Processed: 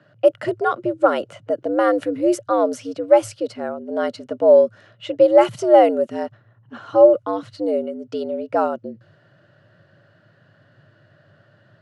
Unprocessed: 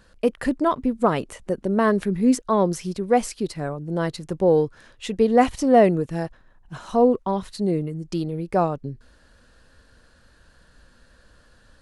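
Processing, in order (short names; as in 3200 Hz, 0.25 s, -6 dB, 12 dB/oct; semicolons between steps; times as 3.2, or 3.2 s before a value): low-pass opened by the level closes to 2900 Hz, open at -15 dBFS; frequency shift +96 Hz; small resonant body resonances 570/1400/2900 Hz, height 10 dB, ringing for 25 ms; gain -2 dB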